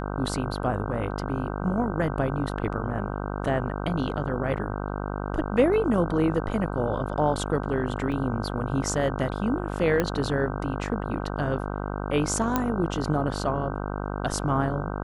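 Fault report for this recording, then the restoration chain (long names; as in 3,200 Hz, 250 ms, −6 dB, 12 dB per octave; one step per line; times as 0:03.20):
mains buzz 50 Hz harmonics 31 −31 dBFS
0:08.12: drop-out 3.1 ms
0:10.00: click −11 dBFS
0:12.56: click −9 dBFS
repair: click removal
hum removal 50 Hz, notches 31
repair the gap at 0:08.12, 3.1 ms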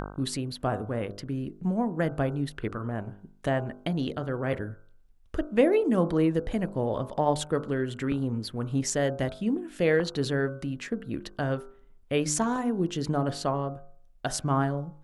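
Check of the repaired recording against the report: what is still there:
0:10.00: click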